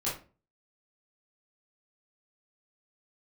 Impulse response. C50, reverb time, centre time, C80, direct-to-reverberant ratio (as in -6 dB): 5.5 dB, 0.35 s, 35 ms, 12.5 dB, -8.5 dB